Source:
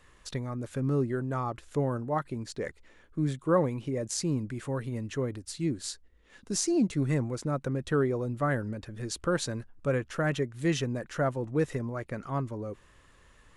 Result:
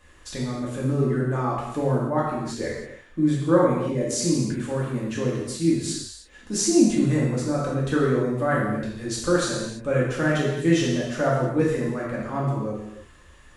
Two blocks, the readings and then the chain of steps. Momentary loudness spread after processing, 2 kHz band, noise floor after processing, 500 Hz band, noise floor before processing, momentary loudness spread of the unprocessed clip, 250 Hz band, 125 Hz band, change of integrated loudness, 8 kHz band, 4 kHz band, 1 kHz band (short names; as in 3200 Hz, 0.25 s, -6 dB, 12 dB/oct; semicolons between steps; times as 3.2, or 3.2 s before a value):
11 LU, +7.0 dB, -51 dBFS, +7.0 dB, -60 dBFS, 10 LU, +8.5 dB, +6.0 dB, +7.5 dB, +7.5 dB, +7.0 dB, +6.5 dB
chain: non-linear reverb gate 0.36 s falling, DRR -6 dB